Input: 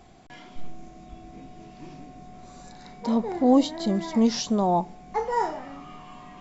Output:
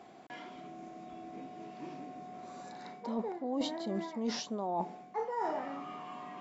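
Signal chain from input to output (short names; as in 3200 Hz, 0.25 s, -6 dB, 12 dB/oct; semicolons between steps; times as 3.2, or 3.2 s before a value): HPF 270 Hz 12 dB/oct; high shelf 3500 Hz -11 dB; reverse; compressor 12:1, threshold -33 dBFS, peak gain reduction 18 dB; reverse; gain +1.5 dB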